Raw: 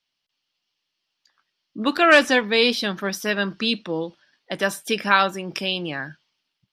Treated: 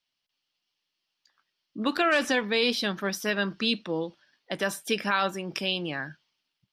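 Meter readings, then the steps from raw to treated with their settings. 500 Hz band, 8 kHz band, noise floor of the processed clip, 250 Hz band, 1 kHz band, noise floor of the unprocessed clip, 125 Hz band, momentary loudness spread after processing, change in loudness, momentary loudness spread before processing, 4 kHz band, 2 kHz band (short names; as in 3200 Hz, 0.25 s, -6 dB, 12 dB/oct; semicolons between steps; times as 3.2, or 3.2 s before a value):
-6.5 dB, -4.0 dB, -83 dBFS, -5.0 dB, -7.5 dB, -80 dBFS, -3.5 dB, 11 LU, -6.5 dB, 15 LU, -5.5 dB, -7.5 dB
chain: limiter -10 dBFS, peak gain reduction 7.5 dB; gain -3.5 dB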